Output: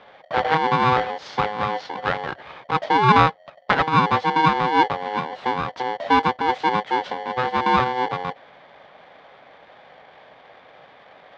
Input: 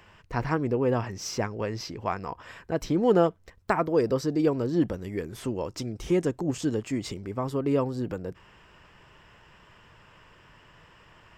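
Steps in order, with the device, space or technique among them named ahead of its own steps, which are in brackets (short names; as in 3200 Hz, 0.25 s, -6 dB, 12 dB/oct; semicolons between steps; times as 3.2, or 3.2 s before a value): ring modulator pedal into a guitar cabinet (polarity switched at an audio rate 630 Hz; speaker cabinet 92–3500 Hz, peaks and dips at 96 Hz -7 dB, 220 Hz -4 dB, 330 Hz -7 dB, 570 Hz +3 dB, 820 Hz +5 dB, 2600 Hz -6 dB); gain +6.5 dB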